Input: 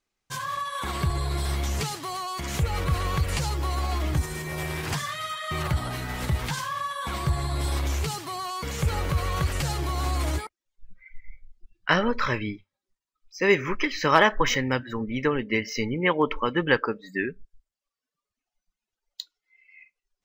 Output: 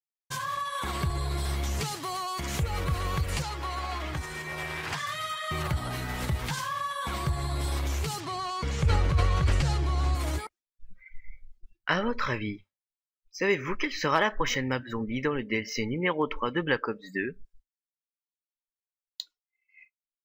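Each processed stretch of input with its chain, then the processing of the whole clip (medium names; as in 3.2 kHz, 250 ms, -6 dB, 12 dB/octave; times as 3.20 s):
3.42–5.07 s: low-pass 1.3 kHz 6 dB/octave + tilt shelf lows -9 dB, about 790 Hz
8.20–10.15 s: low-pass 6.7 kHz + bass shelf 140 Hz +8 dB + decay stretcher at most 23 dB/s
whole clip: expander -46 dBFS; compression 1.5:1, threshold -31 dBFS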